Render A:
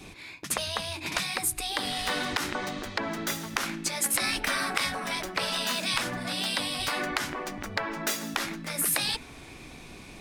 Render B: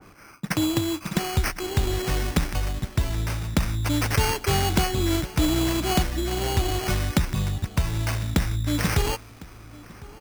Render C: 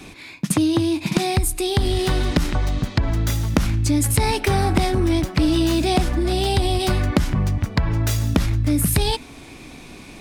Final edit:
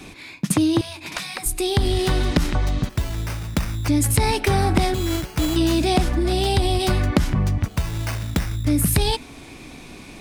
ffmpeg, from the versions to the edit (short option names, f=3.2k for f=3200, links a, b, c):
-filter_complex "[1:a]asplit=3[a][b][c];[2:a]asplit=5[d][e][f][g][h];[d]atrim=end=0.812[i];[0:a]atrim=start=0.808:end=1.462[j];[e]atrim=start=1.458:end=2.892[k];[a]atrim=start=2.888:end=3.882[l];[f]atrim=start=3.878:end=4.942[m];[b]atrim=start=4.938:end=5.562[n];[g]atrim=start=5.558:end=7.682[o];[c]atrim=start=7.678:end=8.652[p];[h]atrim=start=8.648[q];[i][j]acrossfade=d=0.004:c1=hsin:c2=hsin[r];[r][k]acrossfade=d=0.004:c1=hsin:c2=hsin[s];[s][l]acrossfade=d=0.004:c1=hsin:c2=hsin[t];[t][m]acrossfade=d=0.004:c1=hsin:c2=hsin[u];[u][n]acrossfade=d=0.004:c1=hsin:c2=hsin[v];[v][o]acrossfade=d=0.004:c1=hsin:c2=hsin[w];[w][p]acrossfade=d=0.004:c1=hsin:c2=hsin[x];[x][q]acrossfade=d=0.004:c1=hsin:c2=hsin"